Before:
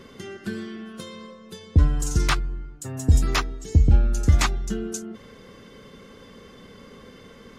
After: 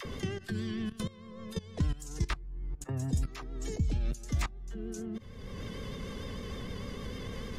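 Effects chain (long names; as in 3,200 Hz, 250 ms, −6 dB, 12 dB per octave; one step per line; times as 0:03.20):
notch filter 1,400 Hz, Q 12
all-pass dispersion lows, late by 50 ms, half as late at 500 Hz
output level in coarse steps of 19 dB
pitch vibrato 6.6 Hz 51 cents
multiband upward and downward compressor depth 100%
level −4 dB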